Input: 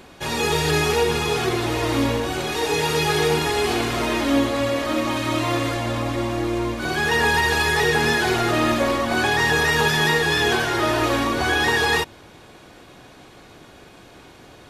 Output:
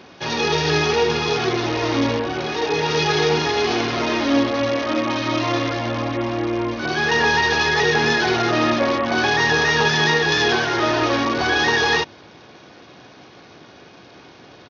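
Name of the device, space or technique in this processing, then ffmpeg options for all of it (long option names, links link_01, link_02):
Bluetooth headset: -filter_complex "[0:a]asettb=1/sr,asplit=3[link_01][link_02][link_03];[link_01]atrim=end=2.214[link_04];[link_02]atrim=start=2.21:end=2.89,asetpts=PTS-STARTPTS,afade=type=in:duration=0.004:curve=qsin,afade=type=out:start_time=0.676:duration=0.004:curve=qsin,equalizer=frequency=6300:width=0.6:gain=-5[link_05];[link_03]atrim=start=2.886[link_06];[link_04][link_05]acrossfade=duration=0.004:curve1=hsin:curve2=qsin[link_07];[link_07][link_06]acrossfade=duration=0.004:curve1=qsin:curve2=hsin,highpass=110,aresample=16000,aresample=44100,volume=1.5dB" -ar 48000 -c:a sbc -b:a 64k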